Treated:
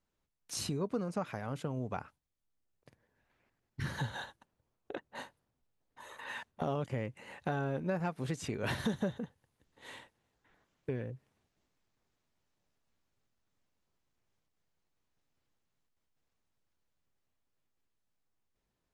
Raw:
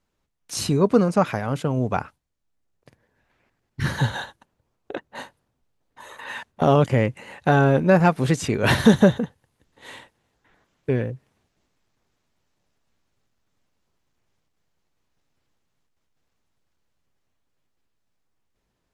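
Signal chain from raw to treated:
downward compressor 2.5 to 1, threshold −27 dBFS, peak gain reduction 12.5 dB
level −8.5 dB

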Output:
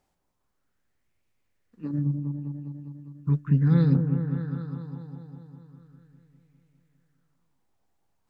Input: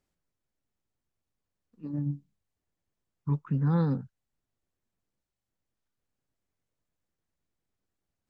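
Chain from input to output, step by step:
0:01.91–0:03.95: parametric band 920 Hz −14.5 dB 1.4 octaves
echo whose low-pass opens from repeat to repeat 202 ms, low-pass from 750 Hz, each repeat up 1 octave, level −6 dB
auto-filter bell 0.38 Hz 800–2,300 Hz +10 dB
level +5.5 dB

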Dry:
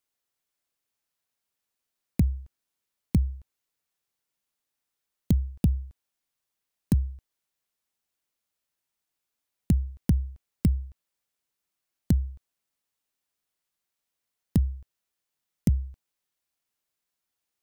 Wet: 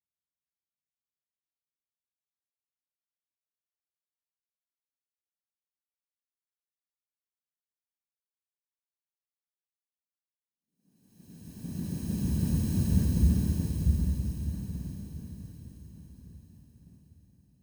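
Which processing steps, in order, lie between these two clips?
flutter between parallel walls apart 9.2 metres, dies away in 0.76 s
extreme stretch with random phases 18×, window 0.25 s, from 0:06.22
multiband upward and downward expander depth 100%
level −7 dB

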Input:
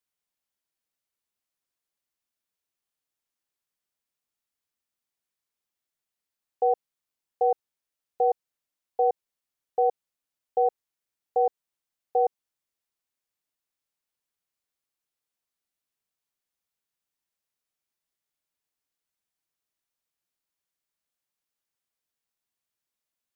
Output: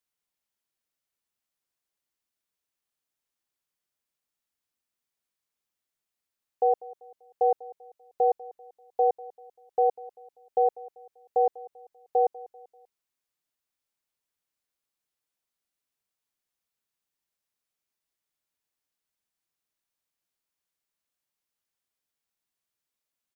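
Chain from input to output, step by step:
repeating echo 195 ms, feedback 43%, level −20 dB

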